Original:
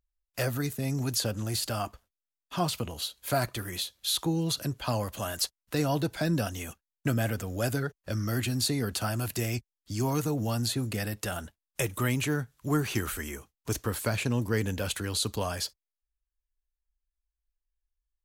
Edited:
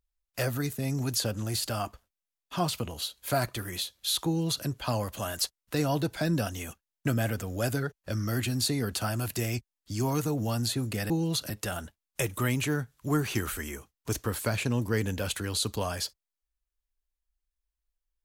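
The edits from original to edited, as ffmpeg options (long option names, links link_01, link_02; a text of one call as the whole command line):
ffmpeg -i in.wav -filter_complex "[0:a]asplit=3[link_01][link_02][link_03];[link_01]atrim=end=11.102[link_04];[link_02]atrim=start=4.258:end=4.662[link_05];[link_03]atrim=start=11.098[link_06];[link_04][link_05]acrossfade=duration=0.004:curve1=hsin:curve2=hsin[link_07];[link_07][link_06]acrossfade=duration=0.004:curve1=hsin:curve2=hsin" out.wav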